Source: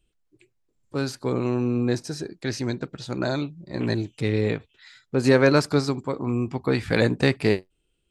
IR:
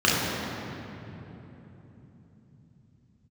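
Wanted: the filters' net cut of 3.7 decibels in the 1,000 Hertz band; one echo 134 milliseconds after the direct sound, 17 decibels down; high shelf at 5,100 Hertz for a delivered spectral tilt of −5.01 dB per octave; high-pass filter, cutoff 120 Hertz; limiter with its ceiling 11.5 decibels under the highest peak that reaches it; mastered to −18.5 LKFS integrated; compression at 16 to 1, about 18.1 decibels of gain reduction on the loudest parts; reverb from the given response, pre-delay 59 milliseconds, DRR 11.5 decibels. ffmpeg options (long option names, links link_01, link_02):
-filter_complex "[0:a]highpass=120,equalizer=frequency=1000:width_type=o:gain=-5.5,highshelf=frequency=5100:gain=7,acompressor=threshold=-31dB:ratio=16,alimiter=level_in=3.5dB:limit=-24dB:level=0:latency=1,volume=-3.5dB,aecho=1:1:134:0.141,asplit=2[link_01][link_02];[1:a]atrim=start_sample=2205,adelay=59[link_03];[link_02][link_03]afir=irnorm=-1:irlink=0,volume=-31dB[link_04];[link_01][link_04]amix=inputs=2:normalize=0,volume=20dB"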